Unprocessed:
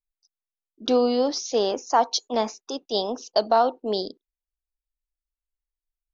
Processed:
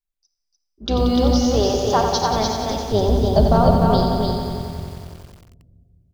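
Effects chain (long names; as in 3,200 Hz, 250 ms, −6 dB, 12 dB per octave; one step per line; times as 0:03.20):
sub-octave generator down 2 octaves, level +2 dB
0:02.89–0:03.86: spectral tilt −3.5 dB per octave
single-tap delay 297 ms −3.5 dB
convolution reverb RT60 2.0 s, pre-delay 5 ms, DRR 5 dB
feedback echo at a low word length 91 ms, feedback 80%, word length 7 bits, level −7 dB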